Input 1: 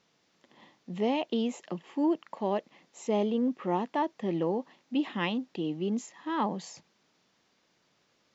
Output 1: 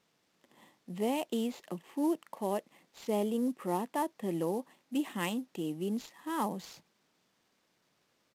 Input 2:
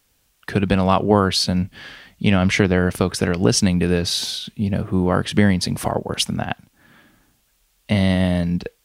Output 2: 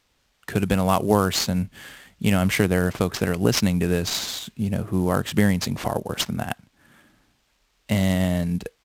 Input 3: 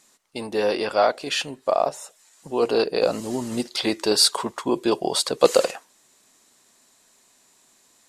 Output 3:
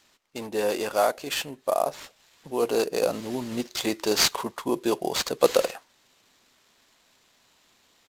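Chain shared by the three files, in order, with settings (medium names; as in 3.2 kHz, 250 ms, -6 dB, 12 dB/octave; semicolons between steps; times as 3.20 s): sample-rate reducer 11 kHz, jitter 20%; resampled via 32 kHz; trim -3.5 dB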